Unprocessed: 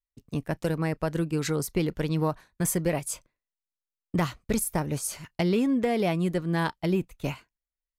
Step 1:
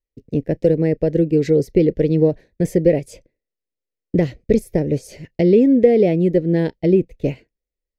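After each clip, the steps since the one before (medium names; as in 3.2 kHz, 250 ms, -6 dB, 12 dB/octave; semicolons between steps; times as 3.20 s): FFT filter 190 Hz 0 dB, 500 Hz +8 dB, 1.2 kHz -29 dB, 1.9 kHz -5 dB, 3.3 kHz -12 dB, 5.2 kHz -10 dB, 8.7 kHz -21 dB; trim +8 dB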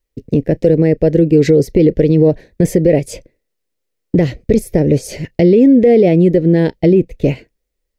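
in parallel at 0 dB: compression, threshold -21 dBFS, peak gain reduction 13.5 dB; on the sum: peak limiter -8.5 dBFS, peak gain reduction 9 dB; trim +6 dB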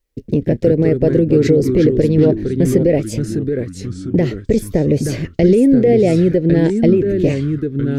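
in parallel at -2 dB: compression, threshold -17 dBFS, peak gain reduction 11 dB; on the sum: ever faster or slower copies 83 ms, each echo -3 st, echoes 3, each echo -6 dB; trim -5 dB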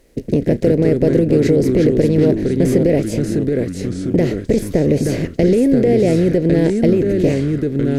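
spectral levelling over time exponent 0.6; trim -4 dB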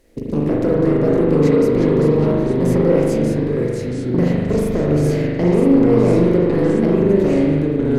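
saturation -9.5 dBFS, distortion -16 dB; spring tank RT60 1.6 s, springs 40 ms, chirp 35 ms, DRR -3.5 dB; trim -4 dB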